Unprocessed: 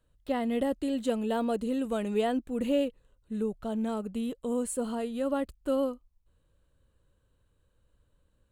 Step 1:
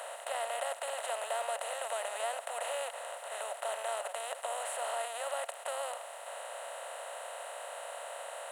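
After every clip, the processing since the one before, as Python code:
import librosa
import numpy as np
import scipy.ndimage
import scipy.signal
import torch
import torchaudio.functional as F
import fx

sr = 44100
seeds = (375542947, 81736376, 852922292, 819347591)

y = fx.bin_compress(x, sr, power=0.2)
y = scipy.signal.sosfilt(scipy.signal.ellip(4, 1.0, 50, 610.0, 'highpass', fs=sr, output='sos'), y)
y = F.gain(torch.from_numpy(y), -7.5).numpy()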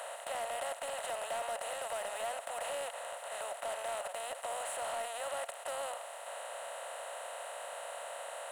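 y = 10.0 ** (-31.0 / 20.0) * np.tanh(x / 10.0 ** (-31.0 / 20.0))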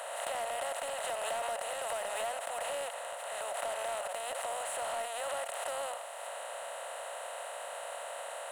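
y = fx.pre_swell(x, sr, db_per_s=26.0)
y = F.gain(torch.from_numpy(y), 1.5).numpy()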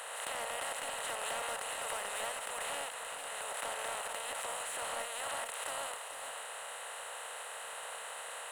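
y = fx.spec_clip(x, sr, under_db=14)
y = y + 10.0 ** (-8.5 / 20.0) * np.pad(y, (int(444 * sr / 1000.0), 0))[:len(y)]
y = F.gain(torch.from_numpy(y), -3.0).numpy()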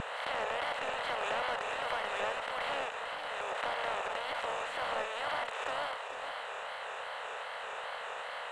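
y = fx.wow_flutter(x, sr, seeds[0], rate_hz=2.1, depth_cents=120.0)
y = fx.air_absorb(y, sr, metres=190.0)
y = F.gain(torch.from_numpy(y), 6.0).numpy()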